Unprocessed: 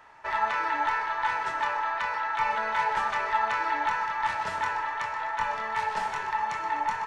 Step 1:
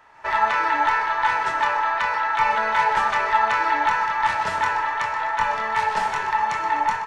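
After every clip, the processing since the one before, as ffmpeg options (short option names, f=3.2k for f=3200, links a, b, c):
-af "dynaudnorm=f=120:g=3:m=7dB"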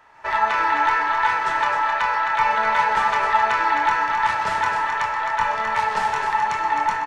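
-af "aecho=1:1:262:0.473"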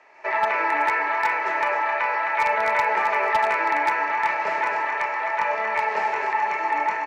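-filter_complex "[0:a]highpass=320,equalizer=f=370:t=q:w=4:g=7,equalizer=f=610:t=q:w=4:g=6,equalizer=f=950:t=q:w=4:g=-4,equalizer=f=1.4k:t=q:w=4:g=-7,equalizer=f=2.3k:t=q:w=4:g=9,equalizer=f=3.4k:t=q:w=4:g=-8,lowpass=f=7k:w=0.5412,lowpass=f=7k:w=1.3066,acrossover=split=2600[a][b];[b]acompressor=threshold=-44dB:ratio=4:attack=1:release=60[c];[a][c]amix=inputs=2:normalize=0,aeval=exprs='0.237*(abs(mod(val(0)/0.237+3,4)-2)-1)':c=same"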